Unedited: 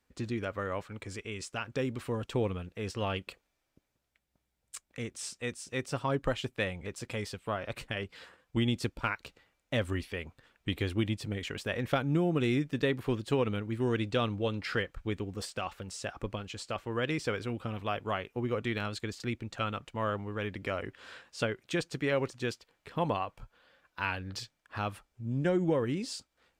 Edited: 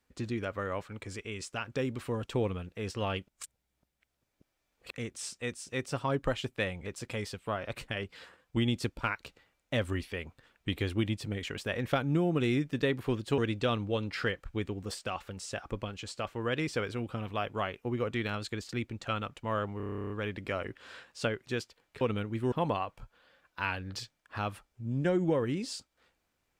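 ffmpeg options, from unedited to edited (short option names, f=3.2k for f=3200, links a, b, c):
-filter_complex "[0:a]asplit=18[a][b][c][d][e][f][g][h][i][j][k][l][m][n][o][p][q][r];[a]atrim=end=3.282[s];[b]atrim=start=3.278:end=4.912,asetpts=PTS-STARTPTS,areverse[t];[c]atrim=start=4.908:end=13.382[u];[d]atrim=start=13.888:end=20.312[v];[e]atrim=start=20.278:end=20.312[w];[f]atrim=start=20.278:end=20.312[x];[g]atrim=start=20.278:end=20.312[y];[h]atrim=start=20.278:end=20.312[z];[i]atrim=start=20.278:end=20.312[aa];[j]atrim=start=20.278:end=20.312[ab];[k]atrim=start=20.278:end=20.312[ac];[l]atrim=start=20.278:end=20.312[ad];[m]atrim=start=20.278:end=20.312[ae];[n]atrim=start=20.278:end=20.312[af];[o]atrim=start=20.278:end=21.652[ag];[p]atrim=start=22.378:end=22.922[ah];[q]atrim=start=13.378:end=13.892[ai];[r]atrim=start=22.918[aj];[s][t]acrossfade=d=0.004:c1=hsin:c2=hsin[ak];[ak][u]acrossfade=d=0.004:c1=hsin:c2=hsin[al];[al][v]acrossfade=d=0.004:c1=hsin:c2=hsin[am];[am][w]acrossfade=d=0.004:c1=hsin:c2=hsin[an];[an][x]acrossfade=d=0.004:c1=hsin:c2=hsin[ao];[ao][y]acrossfade=d=0.004:c1=hsin:c2=hsin[ap];[ap][z]acrossfade=d=0.004:c1=hsin:c2=hsin[aq];[aq][aa]acrossfade=d=0.004:c1=hsin:c2=hsin[ar];[ar][ab]acrossfade=d=0.004:c1=hsin:c2=hsin[as];[as][ac]acrossfade=d=0.004:c1=hsin:c2=hsin[at];[at][ad]acrossfade=d=0.004:c1=hsin:c2=hsin[au];[au][ae]acrossfade=d=0.004:c1=hsin:c2=hsin[av];[av][af]acrossfade=d=0.004:c1=hsin:c2=hsin[aw];[aw][ag]acrossfade=d=0.004:c1=hsin:c2=hsin[ax];[ax][ah]acrossfade=d=0.004:c1=hsin:c2=hsin[ay];[ay][ai]acrossfade=d=0.004:c1=hsin:c2=hsin[az];[az][aj]acrossfade=d=0.004:c1=hsin:c2=hsin"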